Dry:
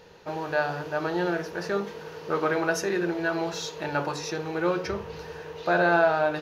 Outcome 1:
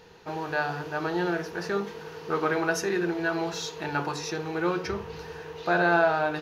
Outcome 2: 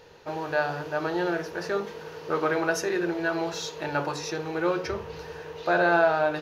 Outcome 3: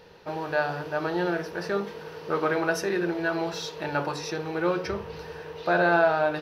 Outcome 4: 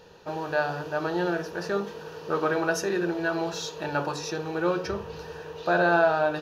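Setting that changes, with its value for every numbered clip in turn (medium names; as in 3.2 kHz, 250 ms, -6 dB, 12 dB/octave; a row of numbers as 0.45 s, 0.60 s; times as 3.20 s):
band-stop, frequency: 570 Hz, 190 Hz, 6.7 kHz, 2.1 kHz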